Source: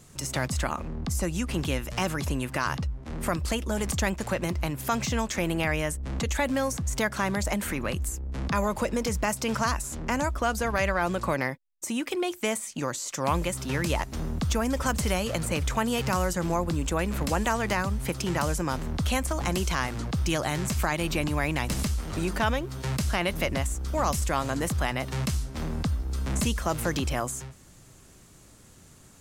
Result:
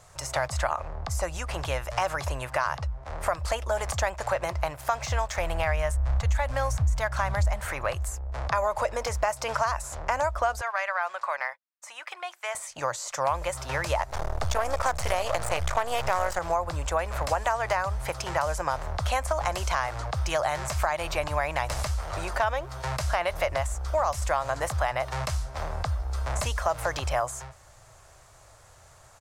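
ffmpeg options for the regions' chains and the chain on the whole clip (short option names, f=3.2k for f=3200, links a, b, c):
-filter_complex "[0:a]asettb=1/sr,asplit=3[a][b][c];[a]atrim=end=4.734[d];[b]atrim=start=4.73:end=7.65,asetpts=PTS-STARTPTS,afade=t=in:d=0.004:c=qsin,afade=t=out:st=2.916:d=0.004:c=qsin,asubboost=boost=11.5:cutoff=130,aeval=exprs='sgn(val(0))*max(abs(val(0))-0.0075,0)':c=same[e];[c]atrim=start=7.646[f];[d][e]acrossfade=d=0.004:c1=hsin:c2=qsin[g];[g][f]acrossfade=d=0.004:c1=qsin:c2=hsin,asettb=1/sr,asplit=3[h][i][j];[h]atrim=end=10.614[k];[i]atrim=start=10.61:end=12.55,asetpts=PTS-STARTPTS,afade=t=in:d=0.004:c=qsin,afade=t=out:st=1.936:d=0.004:c=qsin,highpass=1.2k,highshelf=f=4k:g=-11.5[l];[j]atrim=start=12.546[m];[k][l]acrossfade=d=0.004:c1=hsin:c2=qsin[n];[n][m]acrossfade=d=0.004:c1=qsin:c2=hsin,asettb=1/sr,asplit=3[o][p][q];[o]atrim=end=14.094[r];[p]atrim=start=14.09:end=16.39,asetpts=PTS-STARTPTS,afade=t=in:d=0.004:c=qsin,afade=t=out:st=2.296:d=0.004:c=qsin,acontrast=36,aeval=exprs='max(val(0),0)':c=same[s];[q]atrim=start=16.386[t];[r][s]acrossfade=d=0.004:c1=hsin:c2=qsin[u];[u][t]acrossfade=d=0.004:c1=qsin:c2=hsin,firequalizer=gain_entry='entry(110,0);entry(200,-21);entry(610,9);entry(2900,-2);entry(4900,0);entry(14000,-7)':delay=0.05:min_phase=1,acompressor=threshold=-22dB:ratio=4"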